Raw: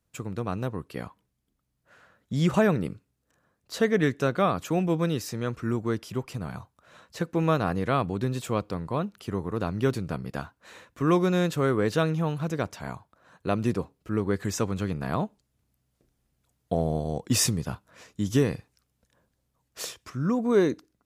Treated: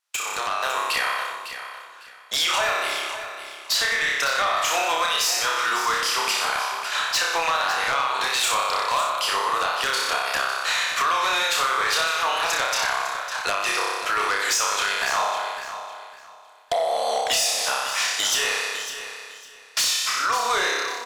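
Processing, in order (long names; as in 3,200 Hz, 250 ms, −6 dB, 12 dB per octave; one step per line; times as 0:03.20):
noise gate with hold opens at −46 dBFS
high-pass filter 750 Hz 24 dB per octave
parametric band 3,900 Hz +7.5 dB 2.4 octaves
brickwall limiter −19.5 dBFS, peak gain reduction 13 dB
flutter between parallel walls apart 5.2 metres, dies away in 0.76 s
downward compressor 6 to 1, threshold −42 dBFS, peak gain reduction 18 dB
sine wavefolder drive 9 dB, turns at −26.5 dBFS
pitch vibrato 6.4 Hz 21 cents
automatic gain control gain up to 4.5 dB
repeating echo 554 ms, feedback 24%, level −11 dB
level +5.5 dB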